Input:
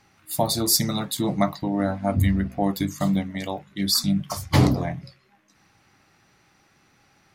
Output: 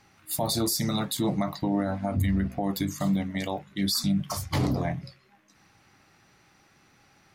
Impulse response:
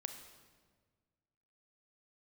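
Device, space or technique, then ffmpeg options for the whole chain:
stacked limiters: -af "alimiter=limit=0.266:level=0:latency=1:release=147,alimiter=limit=0.133:level=0:latency=1:release=38"

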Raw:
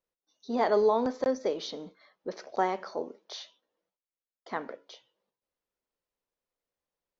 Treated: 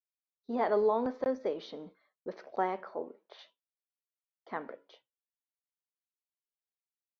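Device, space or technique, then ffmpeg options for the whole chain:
hearing-loss simulation: -filter_complex "[0:a]lowpass=2800,agate=range=0.0224:threshold=0.00251:ratio=3:detection=peak,asettb=1/sr,asplit=3[s0][s1][s2];[s0]atrim=end=2.814[s3];[s1]atrim=start=2.81:end=3.39,asetpts=PTS-STARTPTS,afade=t=in:d=0.004:c=qsin,afade=t=out:st=0.576:d=0.004:c=qsin,bass=f=250:g=-3,treble=f=4000:g=-14[s4];[s2]atrim=start=3.386[s5];[s3][s4]acrossfade=d=0.004:c1=hsin:c2=qsin[s6];[s6][s5]acrossfade=d=0.004:c1=qsin:c2=hsin,volume=0.668"

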